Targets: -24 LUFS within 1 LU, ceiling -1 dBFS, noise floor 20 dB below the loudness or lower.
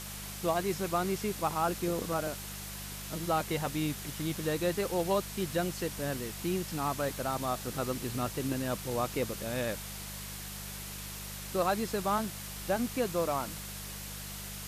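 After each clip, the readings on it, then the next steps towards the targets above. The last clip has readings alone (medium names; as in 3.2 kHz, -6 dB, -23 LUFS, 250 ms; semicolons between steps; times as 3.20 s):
hum 50 Hz; highest harmonic 200 Hz; hum level -44 dBFS; noise floor -42 dBFS; noise floor target -54 dBFS; loudness -33.5 LUFS; peak level -17.0 dBFS; loudness target -24.0 LUFS
-> de-hum 50 Hz, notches 4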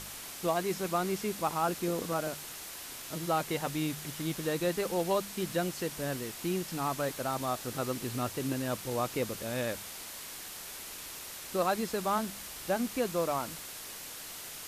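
hum not found; noise floor -44 dBFS; noise floor target -54 dBFS
-> noise reduction 10 dB, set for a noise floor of -44 dBFS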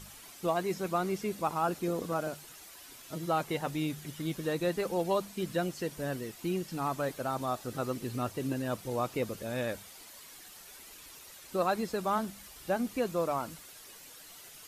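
noise floor -51 dBFS; noise floor target -54 dBFS
-> noise reduction 6 dB, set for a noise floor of -51 dBFS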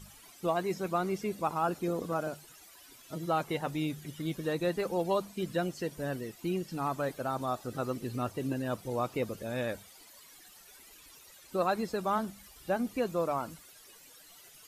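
noise floor -56 dBFS; loudness -34.0 LUFS; peak level -18.0 dBFS; loudness target -24.0 LUFS
-> trim +10 dB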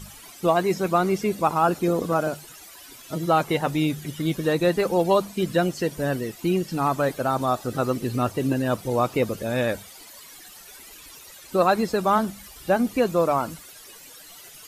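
loudness -24.0 LUFS; peak level -8.0 dBFS; noise floor -46 dBFS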